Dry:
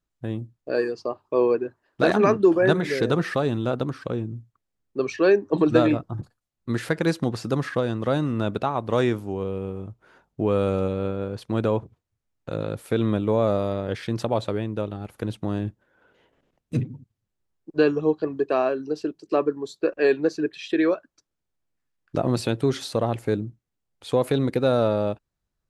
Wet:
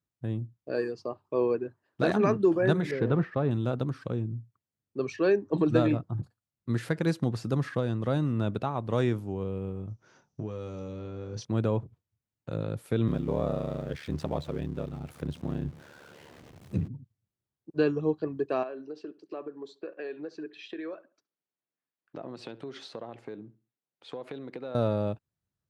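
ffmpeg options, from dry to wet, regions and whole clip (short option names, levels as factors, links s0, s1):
-filter_complex "[0:a]asettb=1/sr,asplit=3[s0][s1][s2];[s0]atrim=end=2.914[s3];[s1]atrim=start=2.91:end=3.51,asetpts=PTS-STARTPTS,afade=t=in:d=0.004:c=qsin,afade=t=out:st=0.596:d=0.004:c=qsin,aeval=exprs='val(0)+0.5*0.0188*sgn(val(0))':c=same,lowpass=2100,agate=range=0.0224:threshold=0.0562:ratio=3:release=100:detection=peak[s4];[s2]atrim=start=3.506[s5];[s3][s4]acrossfade=d=0.004:c1=hsin:c2=qsin[s6];[s6][s5]acrossfade=d=0.004:c1=qsin:c2=hsin,asettb=1/sr,asplit=3[s7][s8][s9];[s7]atrim=end=9.884[s10];[s8]atrim=start=9.88:end=11.45,asetpts=PTS-STARTPTS,afade=t=in:d=0.004:c=qsin,afade=t=out:st=1.566:d=0.004:c=qsin,lowpass=f=5900:t=q:w=9.8,acompressor=threshold=0.0447:ratio=16:attack=3.2:release=140:knee=1:detection=peak,asplit=2[s11][s12];[s12]adelay=28,volume=0.447[s13];[s11][s13]amix=inputs=2:normalize=0,atrim=end_sample=69237[s14];[s9]atrim=start=11.446[s15];[s10][s14]acrossfade=d=0.004:c1=hsin:c2=qsin[s16];[s16][s15]acrossfade=d=0.004:c1=qsin:c2=hsin,asettb=1/sr,asplit=3[s17][s18][s19];[s17]atrim=end=13.074[s20];[s18]atrim=start=13.07:end=16.88,asetpts=PTS-STARTPTS,afade=t=in:d=0.004:c=qsin,afade=t=out:st=3.806:d=0.004:c=qsin,aeval=exprs='val(0)+0.5*0.0141*sgn(val(0))':c=same,highshelf=f=8000:g=-7.5,aeval=exprs='val(0)*sin(2*PI*36*n/s)':c=same[s21];[s19]atrim=start=16.876[s22];[s20][s21]acrossfade=d=0.004:c1=hsin:c2=qsin[s23];[s23][s22]acrossfade=d=0.004:c1=qsin:c2=hsin,asettb=1/sr,asplit=3[s24][s25][s26];[s24]atrim=end=18.634[s27];[s25]atrim=start=18.63:end=24.75,asetpts=PTS-STARTPTS,afade=t=in:d=0.004:c=qsin,afade=t=out:st=6.116:d=0.004:c=qsin,acompressor=threshold=0.0447:ratio=5:attack=3.2:release=140:knee=1:detection=peak,highpass=310,lowpass=3900,asplit=2[s28][s29];[s29]adelay=69,lowpass=f=2800:p=1,volume=0.112,asplit=2[s30][s31];[s31]adelay=69,lowpass=f=2800:p=1,volume=0.3,asplit=2[s32][s33];[s33]adelay=69,lowpass=f=2800:p=1,volume=0.3[s34];[s28][s30][s32][s34]amix=inputs=4:normalize=0,atrim=end_sample=269892[s35];[s26]atrim=start=24.746[s36];[s27][s35]acrossfade=d=0.004:c1=hsin:c2=qsin[s37];[s37][s36]acrossfade=d=0.004:c1=qsin:c2=hsin,highpass=77,equalizer=f=110:t=o:w=2:g=8,volume=0.422"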